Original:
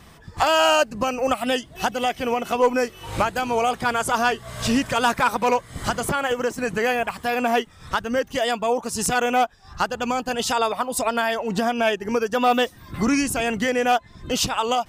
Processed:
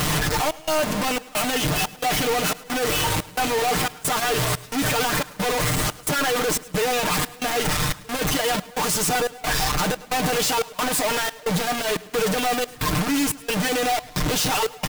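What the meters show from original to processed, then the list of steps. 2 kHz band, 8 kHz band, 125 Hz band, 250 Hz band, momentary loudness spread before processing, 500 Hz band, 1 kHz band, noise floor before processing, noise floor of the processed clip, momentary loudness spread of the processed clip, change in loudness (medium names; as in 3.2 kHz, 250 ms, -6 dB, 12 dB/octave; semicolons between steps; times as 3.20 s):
0.0 dB, +6.0 dB, +7.5 dB, -1.0 dB, 5 LU, -2.5 dB, -3.0 dB, -48 dBFS, -44 dBFS, 3 LU, 0.0 dB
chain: one-bit comparator; comb 6.6 ms, depth 74%; trance gate "xxxxxx.." 178 bpm -24 dB; on a send: feedback delay 106 ms, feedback 49%, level -21 dB; on the sum: trim -1 dB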